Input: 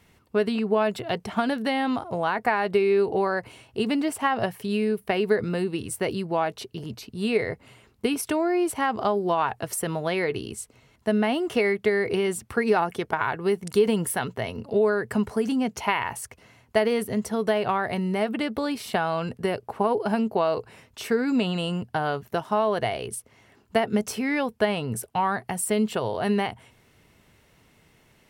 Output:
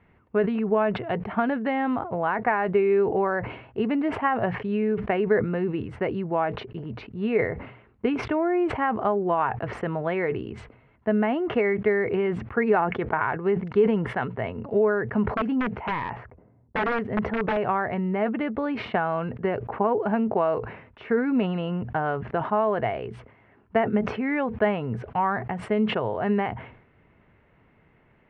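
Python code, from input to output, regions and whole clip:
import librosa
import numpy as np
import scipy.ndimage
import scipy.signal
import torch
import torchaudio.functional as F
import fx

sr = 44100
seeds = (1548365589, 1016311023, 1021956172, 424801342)

y = fx.chain(x, sr, fx.env_lowpass(base_hz=360.0, full_db=-20.5),
    fx.overflow_wrap(gain_db=17.5), at=(15.34, 17.57))
y = scipy.signal.sosfilt(scipy.signal.butter(4, 2200.0, 'lowpass', fs=sr, output='sos'), y)
y = fx.sustainer(y, sr, db_per_s=83.0)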